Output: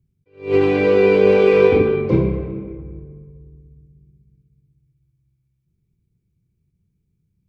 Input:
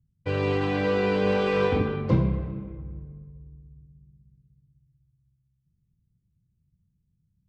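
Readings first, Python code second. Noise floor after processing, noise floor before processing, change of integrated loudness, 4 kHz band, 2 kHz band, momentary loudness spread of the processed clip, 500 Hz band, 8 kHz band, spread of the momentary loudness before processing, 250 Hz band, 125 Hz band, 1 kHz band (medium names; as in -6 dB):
-70 dBFS, -73 dBFS, +9.5 dB, +2.5 dB, +6.0 dB, 19 LU, +12.0 dB, no reading, 16 LU, +7.0 dB, +2.5 dB, +3.0 dB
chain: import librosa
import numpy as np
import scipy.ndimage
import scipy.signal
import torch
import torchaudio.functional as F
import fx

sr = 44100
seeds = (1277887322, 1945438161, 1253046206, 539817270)

y = fx.small_body(x, sr, hz=(390.0, 2300.0), ring_ms=25, db=14)
y = fx.attack_slew(y, sr, db_per_s=180.0)
y = y * 10.0 ** (2.5 / 20.0)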